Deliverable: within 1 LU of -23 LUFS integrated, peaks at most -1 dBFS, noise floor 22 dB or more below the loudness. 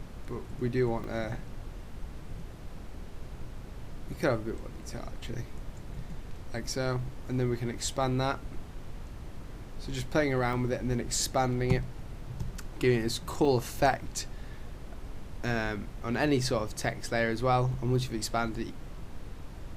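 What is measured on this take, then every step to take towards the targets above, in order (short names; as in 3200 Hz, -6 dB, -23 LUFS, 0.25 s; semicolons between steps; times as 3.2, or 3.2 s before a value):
dropouts 3; longest dropout 2.3 ms; noise floor -44 dBFS; noise floor target -54 dBFS; loudness -31.5 LUFS; peak -11.0 dBFS; loudness target -23.0 LUFS
-> interpolate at 1.04/10.53/13.45, 2.3 ms; noise print and reduce 10 dB; gain +8.5 dB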